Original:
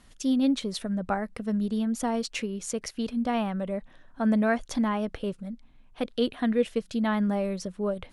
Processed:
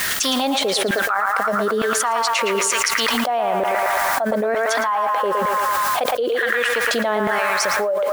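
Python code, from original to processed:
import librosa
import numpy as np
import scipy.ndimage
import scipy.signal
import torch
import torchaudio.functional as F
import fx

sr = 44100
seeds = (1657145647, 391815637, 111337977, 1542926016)

p1 = fx.filter_lfo_highpass(x, sr, shape='saw_down', hz=1.1, low_hz=370.0, high_hz=1800.0, q=4.1)
p2 = fx.echo_banded(p1, sr, ms=113, feedback_pct=75, hz=1400.0, wet_db=-5.0)
p3 = fx.quant_dither(p2, sr, seeds[0], bits=8, dither='triangular')
p4 = p2 + (p3 * librosa.db_to_amplitude(-6.0))
p5 = fx.env_flatten(p4, sr, amount_pct=100)
y = p5 * librosa.db_to_amplitude(-11.0)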